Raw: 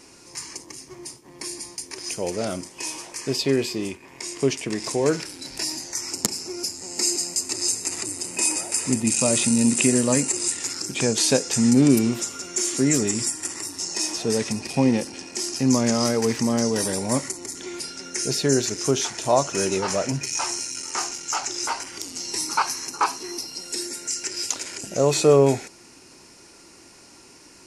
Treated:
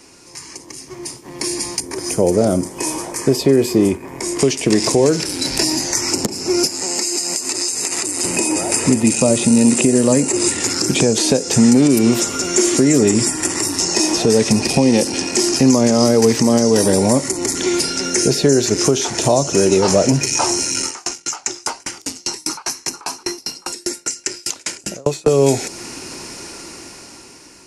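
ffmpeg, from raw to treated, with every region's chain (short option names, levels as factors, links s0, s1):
-filter_complex "[0:a]asettb=1/sr,asplit=3[s0][s1][s2];[s0]atrim=end=1.804[s3];[s1]atrim=start=1.8:end=4.39,asetpts=PTS-STARTPTS,afade=t=in:d=0.004:c=qsin,afade=t=out:st=2.586:d=0.004:c=qsin,equalizer=f=3800:w=0.43:g=-14,bandreject=f=2700:w=13[s4];[s2]atrim=start=4.386[s5];[s3][s4]acrossfade=d=0.004:c1=hsin:c2=qsin[s6];[s6][s5]acrossfade=d=0.004:c1=qsin:c2=hsin,asettb=1/sr,asplit=3[s7][s8][s9];[s7]atrim=end=6.674[s10];[s8]atrim=start=6.67:end=8.23,asetpts=PTS-STARTPTS,afade=t=in:d=0.004:c=qsin,afade=t=out:st=1.556:d=0.004:c=qsin,highpass=f=320:p=1,acompressor=threshold=0.0282:ratio=6:attack=3.2:release=140:knee=1:detection=peak[s11];[s9]atrim=start=8.226[s12];[s10][s11]acrossfade=d=0.004:c1=hsin:c2=qsin[s13];[s13][s12]acrossfade=d=0.004:c1=qsin:c2=hsin,asettb=1/sr,asplit=3[s14][s15][s16];[s14]atrim=end=20.864[s17];[s15]atrim=start=20.86:end=25.28,asetpts=PTS-STARTPTS,afade=t=in:d=0.004:c=qsin,afade=t=out:st=4.416:d=0.004:c=qsin,aecho=1:1:610:0.119,atrim=end_sample=194922,acompressor=threshold=0.0398:ratio=2.5:attack=3.2:release=140:knee=1:detection=peak,aeval=exprs='val(0)*pow(10,-36*if(lt(mod(5*n/s,1),2*abs(5)/1000),1-mod(5*n/s,1)/(2*abs(5)/1000),(mod(5*n/s,1)-2*abs(5)/1000)/(1-2*abs(5)/1000))/20)':c=same[s18];[s16]atrim=start=25.276[s19];[s17][s18]acrossfade=d=0.004:c1=hsin:c2=qsin[s20];[s20][s19]acrossfade=d=0.004:c1=qsin:c2=hsin,acrossover=split=330|730|3300[s21][s22][s23][s24];[s21]acompressor=threshold=0.0282:ratio=4[s25];[s22]acompressor=threshold=0.0398:ratio=4[s26];[s23]acompressor=threshold=0.00501:ratio=4[s27];[s24]acompressor=threshold=0.0158:ratio=4[s28];[s25][s26][s27][s28]amix=inputs=4:normalize=0,alimiter=limit=0.1:level=0:latency=1:release=307,dynaudnorm=f=300:g=9:m=5.01,volume=1.5"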